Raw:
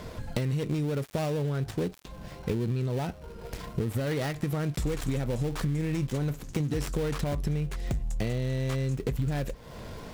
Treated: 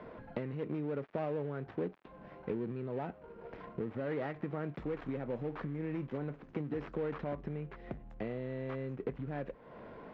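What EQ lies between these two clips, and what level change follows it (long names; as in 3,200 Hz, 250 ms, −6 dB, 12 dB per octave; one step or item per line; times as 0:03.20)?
low-pass filter 6,500 Hz
high-frequency loss of the air 180 metres
three-way crossover with the lows and the highs turned down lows −17 dB, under 190 Hz, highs −20 dB, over 2,500 Hz
−4.0 dB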